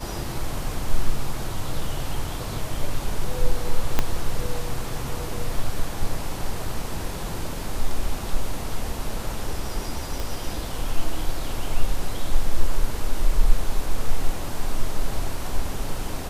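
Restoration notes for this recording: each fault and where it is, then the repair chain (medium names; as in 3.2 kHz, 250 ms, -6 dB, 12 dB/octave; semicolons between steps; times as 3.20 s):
3.99 s: pop -5 dBFS
10.20 s: pop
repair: de-click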